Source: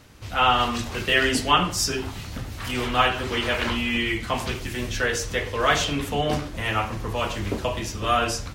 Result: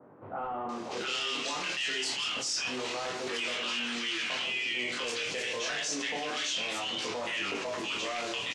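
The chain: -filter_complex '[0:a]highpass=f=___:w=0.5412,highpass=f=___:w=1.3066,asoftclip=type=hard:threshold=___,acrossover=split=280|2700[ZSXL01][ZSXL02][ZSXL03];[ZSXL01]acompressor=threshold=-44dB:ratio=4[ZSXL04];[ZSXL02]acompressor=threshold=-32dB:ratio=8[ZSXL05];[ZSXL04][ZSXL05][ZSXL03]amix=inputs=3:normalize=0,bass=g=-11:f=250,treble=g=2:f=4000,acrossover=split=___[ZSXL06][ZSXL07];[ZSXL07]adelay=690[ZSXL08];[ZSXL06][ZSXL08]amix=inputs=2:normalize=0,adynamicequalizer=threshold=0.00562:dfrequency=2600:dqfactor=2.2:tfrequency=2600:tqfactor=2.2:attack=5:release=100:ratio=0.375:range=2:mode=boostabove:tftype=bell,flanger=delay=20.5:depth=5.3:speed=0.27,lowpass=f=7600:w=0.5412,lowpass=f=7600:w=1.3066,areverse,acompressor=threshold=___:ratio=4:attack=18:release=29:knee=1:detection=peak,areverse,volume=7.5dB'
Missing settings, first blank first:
130, 130, -19.5dB, 1100, -44dB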